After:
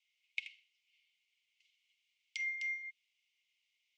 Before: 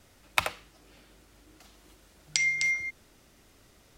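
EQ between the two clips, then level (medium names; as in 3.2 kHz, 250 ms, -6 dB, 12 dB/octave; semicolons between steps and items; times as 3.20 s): rippled Chebyshev high-pass 2.1 kHz, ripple 6 dB; tape spacing loss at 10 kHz 38 dB; +1.5 dB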